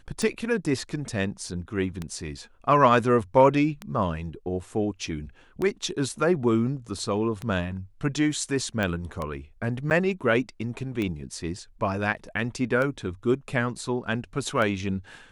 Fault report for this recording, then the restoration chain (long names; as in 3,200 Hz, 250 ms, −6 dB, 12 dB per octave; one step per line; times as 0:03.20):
scratch tick 33 1/3 rpm −17 dBFS
0:08.83: click −15 dBFS
0:09.90–0:09.91: drop-out 9.8 ms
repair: click removal
repair the gap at 0:09.90, 9.8 ms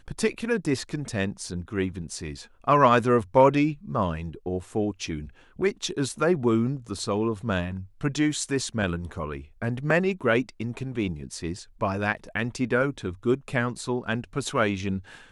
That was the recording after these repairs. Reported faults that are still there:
none of them is left